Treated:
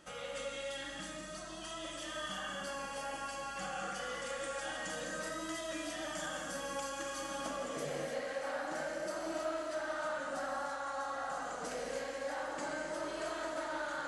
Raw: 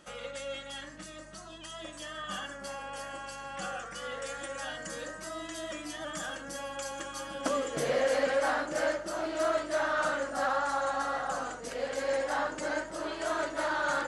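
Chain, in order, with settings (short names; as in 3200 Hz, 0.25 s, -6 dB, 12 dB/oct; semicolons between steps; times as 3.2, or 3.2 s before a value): compressor, threshold -37 dBFS, peak gain reduction 13 dB; non-linear reverb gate 0.33 s flat, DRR -1.5 dB; gain -3 dB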